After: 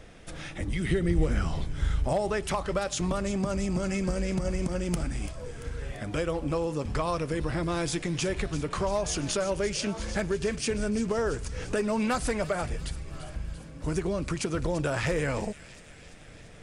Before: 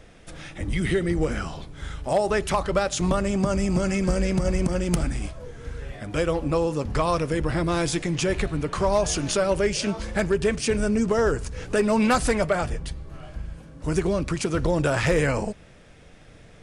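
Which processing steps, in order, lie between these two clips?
downward compressor 2 to 1, threshold −30 dBFS, peak gain reduction 7.5 dB
0:00.90–0:02.30: low-shelf EQ 160 Hz +10.5 dB
on a send: delay with a high-pass on its return 340 ms, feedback 65%, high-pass 2,700 Hz, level −11.5 dB

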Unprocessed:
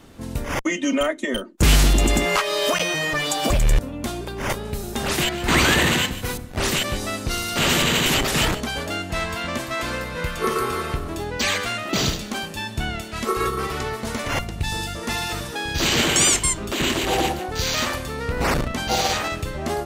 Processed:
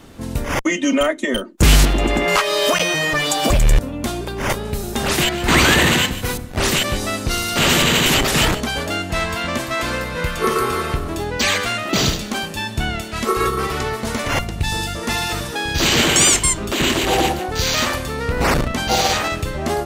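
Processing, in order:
0:01.85–0:02.28: bass and treble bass −6 dB, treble −15 dB
in parallel at −9.5 dB: soft clipping −13.5 dBFS, distortion −16 dB
on the sum: level +2 dB

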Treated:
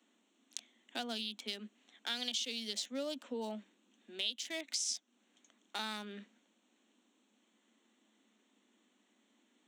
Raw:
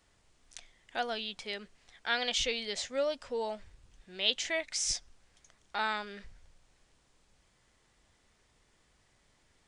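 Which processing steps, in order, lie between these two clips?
adaptive Wiener filter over 9 samples
Butterworth high-pass 210 Hz 96 dB per octave
flat-topped bell 950 Hz −13 dB 2.9 octaves
downward compressor 4 to 1, threshold −44 dBFS, peak gain reduction 17 dB
level +8 dB

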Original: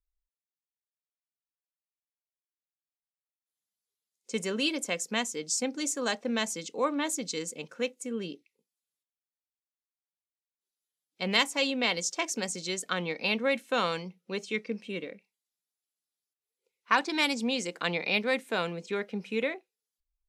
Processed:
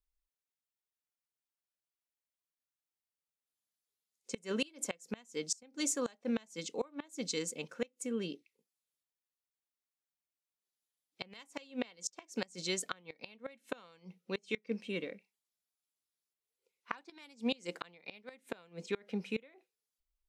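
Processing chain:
gate with flip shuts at −20 dBFS, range −27 dB
level −2 dB

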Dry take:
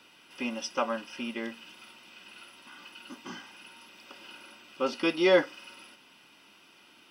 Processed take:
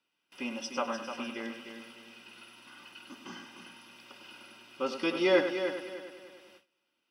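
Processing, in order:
echo machine with several playback heads 100 ms, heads first and third, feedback 48%, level −9 dB
noise gate with hold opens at −42 dBFS
level −3.5 dB

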